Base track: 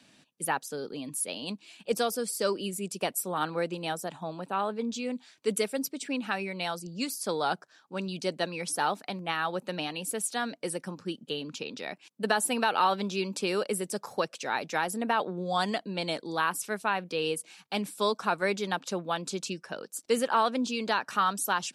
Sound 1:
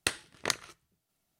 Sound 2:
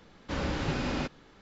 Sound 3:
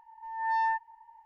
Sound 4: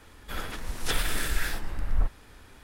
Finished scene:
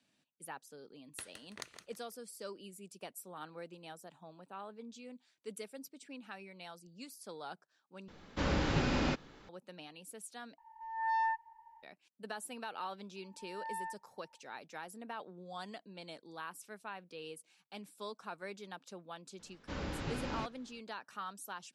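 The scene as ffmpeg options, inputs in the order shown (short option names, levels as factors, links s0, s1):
-filter_complex "[2:a]asplit=2[s0][s1];[3:a]asplit=2[s2][s3];[0:a]volume=0.141[s4];[1:a]aecho=1:1:165|330|495:0.355|0.0958|0.0259[s5];[s4]asplit=3[s6][s7][s8];[s6]atrim=end=8.084[s9];[s0]atrim=end=1.41,asetpts=PTS-STARTPTS,volume=0.944[s10];[s7]atrim=start=9.486:end=10.584[s11];[s2]atrim=end=1.25,asetpts=PTS-STARTPTS,volume=0.596[s12];[s8]atrim=start=11.826[s13];[s5]atrim=end=1.39,asetpts=PTS-STARTPTS,volume=0.15,afade=t=in:d=0.1,afade=t=out:st=1.29:d=0.1,adelay=1120[s14];[s3]atrim=end=1.25,asetpts=PTS-STARTPTS,volume=0.2,afade=t=in:d=0.004:c=hsin,afade=t=out:st=1.246:d=0.004:c=hsin,adelay=580356S[s15];[s1]atrim=end=1.41,asetpts=PTS-STARTPTS,volume=0.376,afade=t=in:d=0.004:c=hsin,afade=t=out:st=1.406:d=0.004:c=hsin,adelay=19390[s16];[s9][s10]acrossfade=d=0.004:c1=hsin:c2=hsin[s17];[s17][s11]acrossfade=d=0.004:c1=hsin:c2=hsin[s18];[s18][s12]acrossfade=d=0.004:c1=hsin:c2=hsin[s19];[s19][s13]acrossfade=d=0.004:c1=hsin:c2=hsin[s20];[s20][s14][s15][s16]amix=inputs=4:normalize=0"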